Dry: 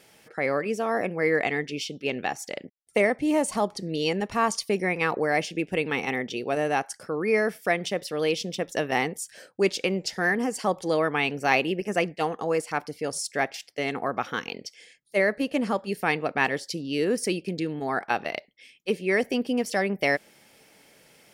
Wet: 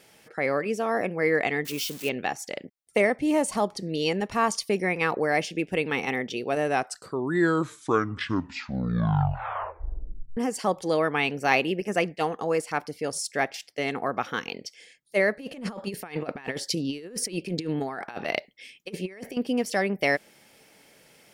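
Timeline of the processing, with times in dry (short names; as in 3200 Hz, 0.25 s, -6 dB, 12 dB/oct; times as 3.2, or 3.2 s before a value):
1.65–2.09 switching spikes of -27.5 dBFS
6.6 tape stop 3.77 s
15.39–19.37 negative-ratio compressor -31 dBFS, ratio -0.5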